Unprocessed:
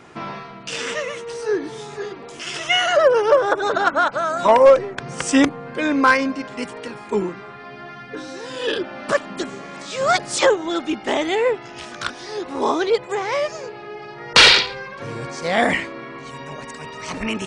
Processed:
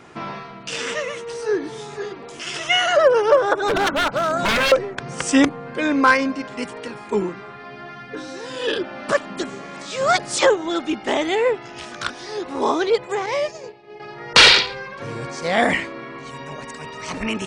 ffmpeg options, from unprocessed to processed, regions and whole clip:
-filter_complex "[0:a]asettb=1/sr,asplit=3[a][b][c];[a]atrim=end=3.684[d];[b]atrim=start=3.68:end=4.72,asetpts=PTS-STARTPTS,afade=t=in:d=0.004:c=qsin,afade=t=out:st=1.036:d=0.004:c=qsin,lowshelf=f=440:g=8.5,aeval=exprs='0.211*(abs(mod(val(0)/0.211+3,4)-2)-1)':c=same[e];[c]atrim=start=4.716[f];[d][e]acrossfade=d=0.004:c1=hsin:c2=qsin[g];[g][f]acrossfade=d=0.004:c1=qsin:c2=hsin,asettb=1/sr,asplit=3[h][i][j];[h]atrim=end=13.264[k];[i]atrim=start=13.26:end=14,asetpts=PTS-STARTPTS,afade=t=in:d=0.004:c=qsin,afade=t=out:st=0.736:d=0.004:c=qsin,agate=range=-33dB:threshold=-29dB:ratio=3:release=100:detection=peak,equalizer=f=1.4k:t=o:w=0.39:g=-11.5[l];[j]atrim=start=13.996[m];[k][l]acrossfade=d=0.004:c1=hsin:c2=qsin[n];[n][m]acrossfade=d=0.004:c1=qsin:c2=hsin"

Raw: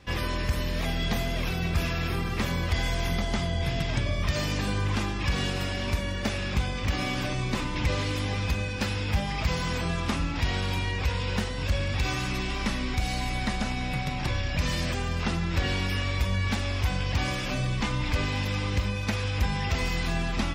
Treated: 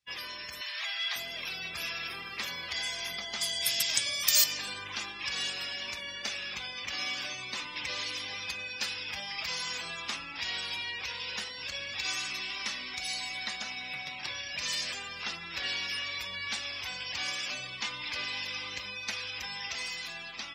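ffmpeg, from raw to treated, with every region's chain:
-filter_complex "[0:a]asettb=1/sr,asplit=3[a][b][c];[a]atrim=end=0.614[d];[b]atrim=start=0.61:end=1.16,asetpts=PTS-STARTPTS,afade=t=in:d=0.004:c=qsin,afade=t=out:st=0.546:d=0.004:c=qsin,highpass=980,highshelf=f=3k:g=-8.5,asplit=2[e][f];[f]highpass=f=720:p=1,volume=15dB,asoftclip=type=tanh:threshold=-20.5dB[g];[e][g]amix=inputs=2:normalize=0,lowpass=f=7.9k:p=1,volume=-6dB[h];[c]atrim=start=1.156[i];[d][h]acrossfade=d=0.004:c1=hsin:c2=qsin[j];[j][i]acrossfade=d=0.004:c1=qsin:c2=hsin,asettb=1/sr,asplit=3[k][l][m];[k]atrim=end=3.414[n];[l]atrim=start=3.41:end=4.44,asetpts=PTS-STARTPTS,afade=t=in:d=0.004:c=qsin,afade=t=out:st=1.026:d=0.004:c=qsin,highpass=66,aemphasis=mode=production:type=75kf[o];[m]atrim=start=4.436[p];[n][o]acrossfade=d=0.004:c1=hsin:c2=qsin[q];[q][p]acrossfade=d=0.004:c1=qsin:c2=hsin,afftdn=nr=25:nf=-40,aderivative,dynaudnorm=f=130:g=17:m=3dB,volume=5.5dB"

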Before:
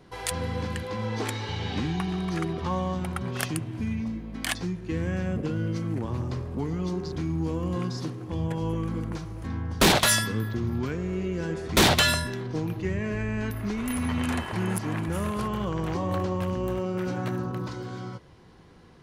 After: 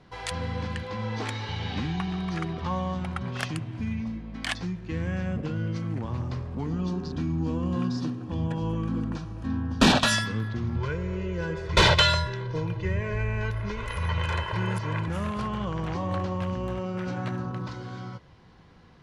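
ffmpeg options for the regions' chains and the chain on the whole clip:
-filter_complex "[0:a]asettb=1/sr,asplit=3[a][b][c];[a]atrim=end=6.664[d];[b]atrim=start=6.66:end=10.15,asetpts=PTS-STARTPTS,afade=t=in:d=0.004:c=qsin,afade=t=out:st=3.486:d=0.004:c=qsin,asuperstop=centerf=2100:order=8:qfactor=7.2,equalizer=f=250:t=o:w=0.36:g=13[e];[c]atrim=start=10.146[f];[d][e]acrossfade=d=0.004:c1=hsin:c2=qsin[g];[g][f]acrossfade=d=0.004:c1=qsin:c2=hsin,asettb=1/sr,asplit=3[h][i][j];[h]atrim=end=10.764[k];[i]atrim=start=10.76:end=15.08,asetpts=PTS-STARTPTS,afade=t=in:d=0.004:c=qsin,afade=t=out:st=4.316:d=0.004:c=qsin,highshelf=f=7.2k:g=-8,aecho=1:1:2:0.96,atrim=end_sample=190512[l];[j]atrim=start=15.076[m];[k][l]acrossfade=d=0.004:c1=hsin:c2=qsin[n];[n][m]acrossfade=d=0.004:c1=qsin:c2=hsin,lowpass=5.6k,equalizer=f=370:t=o:w=0.84:g=-6"

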